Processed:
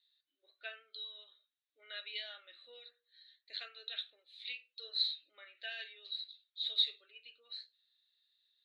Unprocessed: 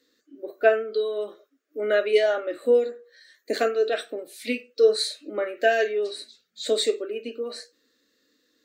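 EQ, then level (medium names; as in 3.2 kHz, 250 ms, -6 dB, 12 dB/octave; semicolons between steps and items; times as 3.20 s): ladder band-pass 4.1 kHz, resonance 75%; distance through air 370 m; peaking EQ 5.3 kHz -10.5 dB 0.49 oct; +10.0 dB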